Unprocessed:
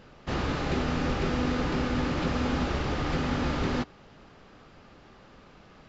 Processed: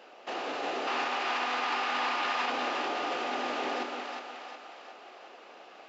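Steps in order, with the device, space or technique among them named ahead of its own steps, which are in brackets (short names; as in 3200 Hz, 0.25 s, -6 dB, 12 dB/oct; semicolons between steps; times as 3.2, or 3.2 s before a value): laptop speaker (HPF 340 Hz 24 dB/oct; bell 730 Hz +9 dB 0.43 oct; bell 2700 Hz +6 dB 0.39 oct; limiter -26.5 dBFS, peak gain reduction 9 dB); 0.87–2.5 graphic EQ 125/250/500/1000/2000/4000 Hz -5/-5/-8/+8/+4/+4 dB; split-band echo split 620 Hz, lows 0.177 s, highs 0.361 s, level -4 dB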